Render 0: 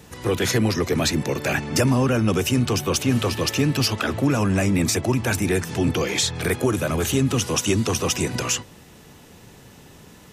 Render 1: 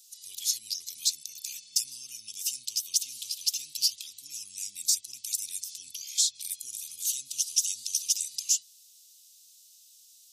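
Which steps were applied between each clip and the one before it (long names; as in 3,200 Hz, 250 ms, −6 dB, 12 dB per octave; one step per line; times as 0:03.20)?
inverse Chebyshev high-pass filter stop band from 1,700 Hz, stop band 50 dB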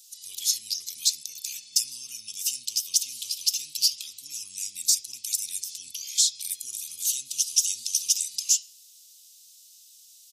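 on a send at −6 dB: comb filter 5.6 ms, depth 56% + convolution reverb RT60 0.50 s, pre-delay 3 ms
on the sum: level +3.5 dB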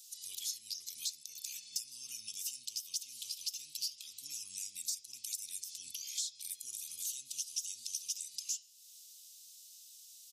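downward compressor 2.5 to 1, threshold −39 dBFS, peak gain reduction 15 dB
level −3 dB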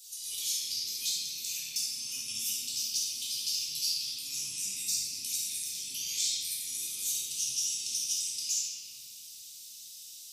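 rectangular room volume 160 cubic metres, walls hard, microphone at 1.6 metres
level +1 dB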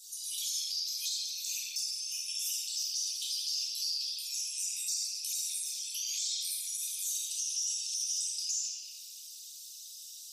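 spectral envelope exaggerated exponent 1.5
Butterworth high-pass 500 Hz 48 dB per octave
brickwall limiter −24 dBFS, peak gain reduction 5.5 dB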